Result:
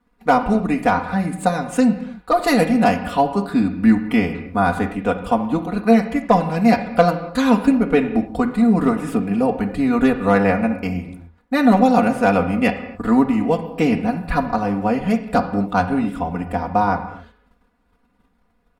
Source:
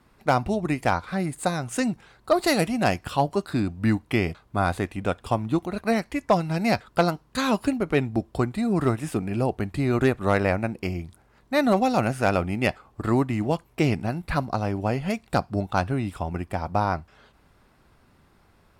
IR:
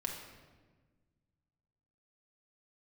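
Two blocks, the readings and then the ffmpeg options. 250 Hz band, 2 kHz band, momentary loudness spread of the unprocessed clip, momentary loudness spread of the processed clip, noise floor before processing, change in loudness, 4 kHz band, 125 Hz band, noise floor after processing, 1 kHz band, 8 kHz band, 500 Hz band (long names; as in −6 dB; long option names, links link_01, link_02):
+9.0 dB, +4.5 dB, 6 LU, 7 LU, −60 dBFS, +7.0 dB, +1.0 dB, +1.0 dB, −63 dBFS, +7.0 dB, can't be measured, +5.5 dB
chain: -filter_complex "[0:a]agate=range=-13dB:threshold=-56dB:ratio=16:detection=peak,aecho=1:1:4.1:0.93,asplit=2[link_01][link_02];[1:a]atrim=start_sample=2205,afade=type=out:start_time=0.33:duration=0.01,atrim=end_sample=14994,lowpass=3000[link_03];[link_02][link_03]afir=irnorm=-1:irlink=0,volume=-0.5dB[link_04];[link_01][link_04]amix=inputs=2:normalize=0,volume=-2dB"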